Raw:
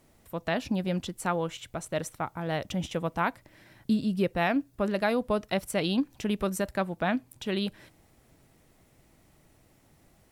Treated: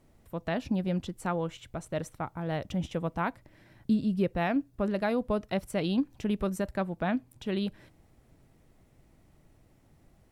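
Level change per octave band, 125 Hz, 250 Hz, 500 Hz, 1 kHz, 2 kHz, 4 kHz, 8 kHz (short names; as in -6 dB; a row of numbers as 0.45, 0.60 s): +0.5, 0.0, -2.0, -3.0, -5.0, -6.0, -8.0 dB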